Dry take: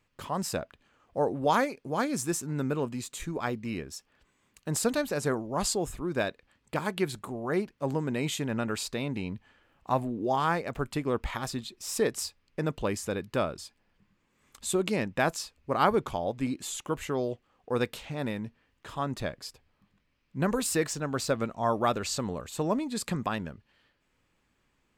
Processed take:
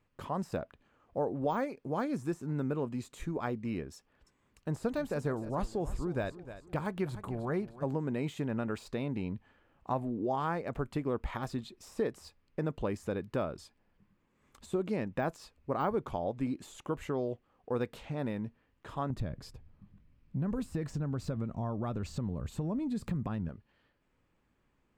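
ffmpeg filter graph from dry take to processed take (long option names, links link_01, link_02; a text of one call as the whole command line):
ffmpeg -i in.wav -filter_complex "[0:a]asettb=1/sr,asplit=3[link_01][link_02][link_03];[link_01]atrim=end=3.964[link_04];[link_02]atrim=start=3.96:end=7.84,asetpts=PTS-STARTPTS,afade=type=in:duration=0.004:curve=qsin,afade=type=out:start_time=3.876:duration=0.004:curve=qsin,asubboost=boost=3.5:cutoff=140,aecho=1:1:305|610|915:0.15|0.0584|0.0228,atrim=end_sample=171108[link_05];[link_03]atrim=start=7.836[link_06];[link_04][link_05]acrossfade=duration=0.004:curve1=hsin:curve2=qsin[link_07];[link_07][link_06]acrossfade=duration=0.004:curve1=qsin:curve2=hsin,asettb=1/sr,asplit=3[link_08][link_09][link_10];[link_08]atrim=end=19.104[link_11];[link_09]atrim=start=19.1:end=23.49,asetpts=PTS-STARTPTS,afade=type=in:duration=0.004:curve=qsin,afade=type=out:start_time=4.386:duration=0.004:curve=qsin,bass=frequency=250:gain=14,treble=frequency=4000:gain=0,acompressor=threshold=-31dB:ratio=3:attack=3.2:release=140:knee=1:detection=peak[link_12];[link_10]atrim=start=23.486[link_13];[link_11][link_12]acrossfade=duration=0.004:curve1=hsin:curve2=qsin[link_14];[link_14][link_13]acrossfade=duration=0.004:curve1=qsin:curve2=hsin,deesser=0.85,highshelf=frequency=2000:gain=-11,acompressor=threshold=-31dB:ratio=2" out.wav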